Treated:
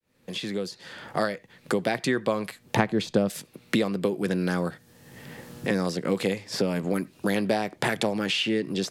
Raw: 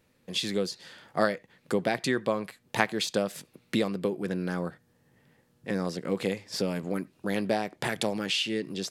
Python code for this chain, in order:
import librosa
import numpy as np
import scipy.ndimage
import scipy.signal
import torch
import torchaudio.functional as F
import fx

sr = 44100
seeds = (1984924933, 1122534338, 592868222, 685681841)

y = fx.fade_in_head(x, sr, length_s=2.41)
y = fx.tilt_eq(y, sr, slope=-3.5, at=(2.76, 3.3))
y = fx.band_squash(y, sr, depth_pct=70)
y = y * 10.0 ** (3.5 / 20.0)